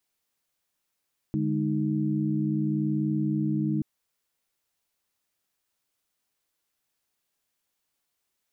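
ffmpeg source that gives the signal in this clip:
-f lavfi -i "aevalsrc='0.0398*(sin(2*PI*146.83*t)+sin(2*PI*207.65*t)+sin(2*PI*311.13*t))':d=2.48:s=44100"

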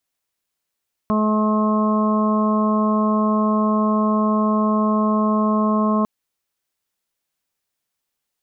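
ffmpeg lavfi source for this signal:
-f lavfi -i "aevalsrc='0.141*sin(2*PI*214*t)+0.0447*sin(2*PI*428*t)+0.0562*sin(2*PI*642*t)+0.0178*sin(2*PI*856*t)+0.0794*sin(2*PI*1070*t)+0.0188*sin(2*PI*1284*t)':d=4.95:s=44100"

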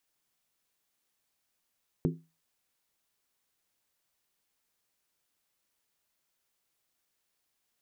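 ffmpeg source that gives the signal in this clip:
-f lavfi -i "aevalsrc='0.0708*pow(10,-3*t/0.29)*sin(2*PI*163*t)+0.0501*pow(10,-3*t/0.23)*sin(2*PI*259.8*t)+0.0355*pow(10,-3*t/0.198)*sin(2*PI*348.2*t)+0.0251*pow(10,-3*t/0.191)*sin(2*PI*374.2*t)+0.0178*pow(10,-3*t/0.178)*sin(2*PI*432.4*t)':d=0.63:s=44100"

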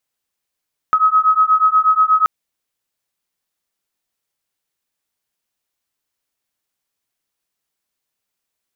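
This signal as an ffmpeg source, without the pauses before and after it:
-f lavfi -i "aevalsrc='0.211*(sin(2*PI*1270*t)+sin(2*PI*1278.3*t))':d=1.33:s=44100"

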